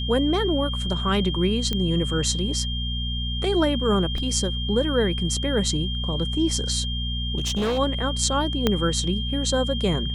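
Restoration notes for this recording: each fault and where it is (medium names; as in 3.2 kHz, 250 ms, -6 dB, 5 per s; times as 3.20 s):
hum 60 Hz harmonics 4 -28 dBFS
whine 3.2 kHz -30 dBFS
1.73 s: pop -12 dBFS
4.18 s: dropout 2.1 ms
7.37–7.79 s: clipped -20.5 dBFS
8.67 s: pop -6 dBFS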